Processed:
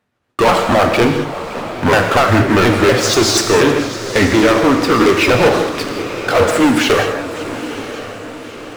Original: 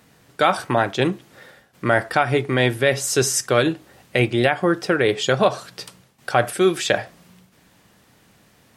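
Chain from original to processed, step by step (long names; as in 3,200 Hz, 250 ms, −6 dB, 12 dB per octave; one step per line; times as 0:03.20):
pitch shifter swept by a sawtooth −6.5 semitones, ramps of 241 ms
bass and treble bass −4 dB, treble −10 dB
leveller curve on the samples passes 5
feedback delay with all-pass diffusion 939 ms, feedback 49%, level −13 dB
reverb whose tail is shaped and stops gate 230 ms flat, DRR 4.5 dB
feedback echo with a swinging delay time 559 ms, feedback 62%, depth 217 cents, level −17.5 dB
level −3.5 dB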